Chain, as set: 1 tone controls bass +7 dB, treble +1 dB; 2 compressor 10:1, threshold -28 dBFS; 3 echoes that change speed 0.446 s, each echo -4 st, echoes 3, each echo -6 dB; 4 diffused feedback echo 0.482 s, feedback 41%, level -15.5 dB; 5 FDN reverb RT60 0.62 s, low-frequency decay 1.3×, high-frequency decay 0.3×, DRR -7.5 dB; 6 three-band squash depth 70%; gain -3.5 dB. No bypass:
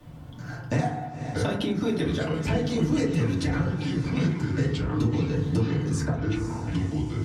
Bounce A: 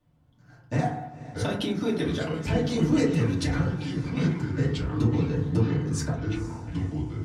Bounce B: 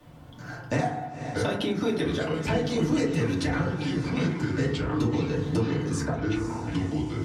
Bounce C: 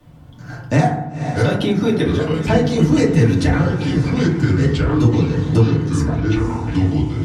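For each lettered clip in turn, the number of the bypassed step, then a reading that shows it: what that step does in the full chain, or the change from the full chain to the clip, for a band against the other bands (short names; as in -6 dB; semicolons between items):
6, crest factor change +2.0 dB; 1, 125 Hz band -4.5 dB; 2, mean gain reduction 6.5 dB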